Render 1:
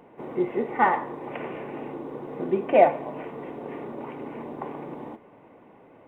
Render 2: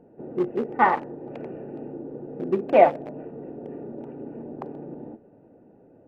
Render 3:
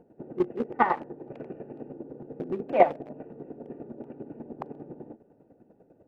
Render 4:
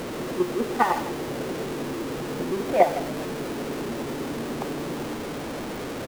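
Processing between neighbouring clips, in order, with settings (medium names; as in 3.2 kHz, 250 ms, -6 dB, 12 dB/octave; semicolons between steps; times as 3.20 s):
local Wiener filter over 41 samples; peaking EQ 1.2 kHz +2 dB; trim +1.5 dB
square tremolo 10 Hz, depth 65%, duty 25%
jump at every zero crossing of -27 dBFS; delay 157 ms -13 dB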